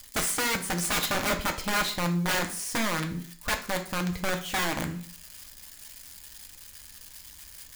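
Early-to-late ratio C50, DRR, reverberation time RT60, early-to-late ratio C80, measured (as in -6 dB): 11.0 dB, 3.0 dB, 0.50 s, 15.5 dB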